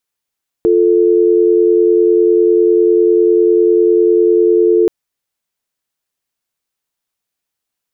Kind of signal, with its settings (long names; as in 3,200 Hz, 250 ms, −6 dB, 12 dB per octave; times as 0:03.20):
call progress tone dial tone, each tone −10 dBFS 4.23 s